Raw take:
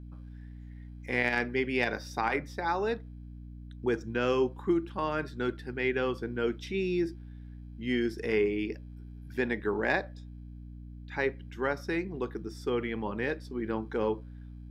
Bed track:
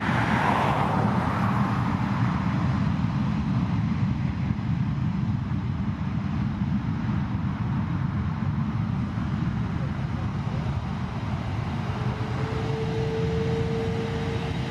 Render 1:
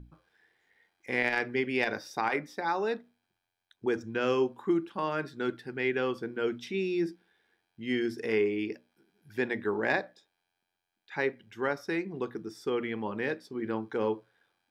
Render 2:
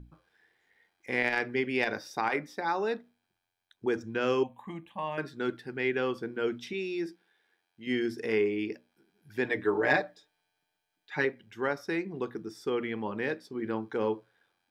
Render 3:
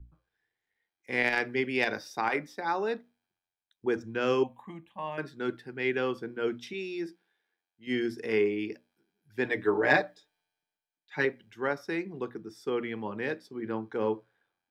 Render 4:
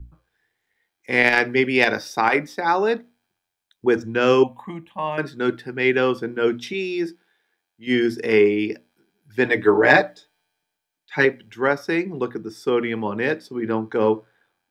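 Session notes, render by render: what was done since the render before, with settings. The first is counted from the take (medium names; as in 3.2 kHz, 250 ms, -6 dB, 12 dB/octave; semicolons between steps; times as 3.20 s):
hum notches 60/120/180/240/300 Hz
4.43–5.18 s: static phaser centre 1.4 kHz, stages 6; 6.73–7.87 s: bass shelf 250 Hz -11.5 dB; 9.44–11.25 s: comb 6.7 ms, depth 88%
three bands expanded up and down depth 40%
trim +10.5 dB; peak limiter -2 dBFS, peak gain reduction 2.5 dB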